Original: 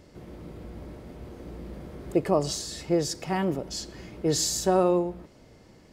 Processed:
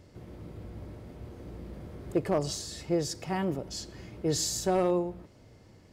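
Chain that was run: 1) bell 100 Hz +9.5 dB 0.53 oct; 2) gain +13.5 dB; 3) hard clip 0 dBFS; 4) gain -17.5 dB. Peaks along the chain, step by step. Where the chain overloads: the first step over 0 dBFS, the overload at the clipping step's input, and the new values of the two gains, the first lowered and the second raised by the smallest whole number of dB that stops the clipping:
-9.5, +4.0, 0.0, -17.5 dBFS; step 2, 4.0 dB; step 2 +9.5 dB, step 4 -13.5 dB

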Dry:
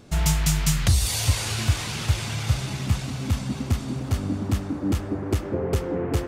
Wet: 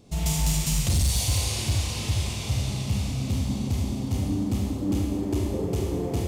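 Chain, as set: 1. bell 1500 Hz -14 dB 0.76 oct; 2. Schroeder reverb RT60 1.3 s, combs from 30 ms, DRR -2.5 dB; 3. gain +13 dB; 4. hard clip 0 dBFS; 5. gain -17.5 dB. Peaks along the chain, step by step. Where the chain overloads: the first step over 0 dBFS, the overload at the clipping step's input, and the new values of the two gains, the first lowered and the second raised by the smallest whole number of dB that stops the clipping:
-10.0, -6.0, +7.0, 0.0, -17.5 dBFS; step 3, 7.0 dB; step 3 +6 dB, step 5 -10.5 dB

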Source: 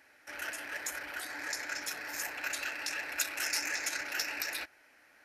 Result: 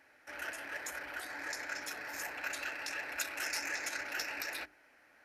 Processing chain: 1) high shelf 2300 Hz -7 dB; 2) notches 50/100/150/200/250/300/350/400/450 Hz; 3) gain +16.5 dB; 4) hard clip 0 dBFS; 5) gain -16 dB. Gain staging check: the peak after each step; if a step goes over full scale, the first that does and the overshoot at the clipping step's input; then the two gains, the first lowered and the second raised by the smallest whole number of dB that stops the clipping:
-22.0, -22.0, -5.5, -5.5, -21.5 dBFS; no overload

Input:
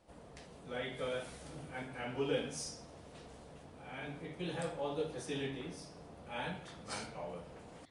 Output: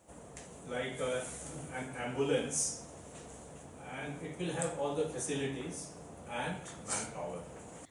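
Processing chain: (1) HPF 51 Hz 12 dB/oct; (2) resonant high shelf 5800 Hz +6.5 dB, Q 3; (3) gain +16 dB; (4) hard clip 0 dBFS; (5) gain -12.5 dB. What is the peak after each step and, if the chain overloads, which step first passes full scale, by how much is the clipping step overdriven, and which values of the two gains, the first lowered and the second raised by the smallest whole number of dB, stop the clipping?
-23.5, -20.5, -4.5, -4.5, -17.0 dBFS; no overload

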